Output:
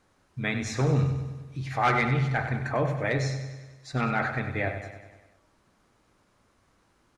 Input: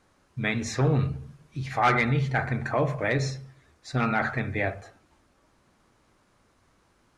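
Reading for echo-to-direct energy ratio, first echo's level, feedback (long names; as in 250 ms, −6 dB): −8.0 dB, −10.0 dB, 59%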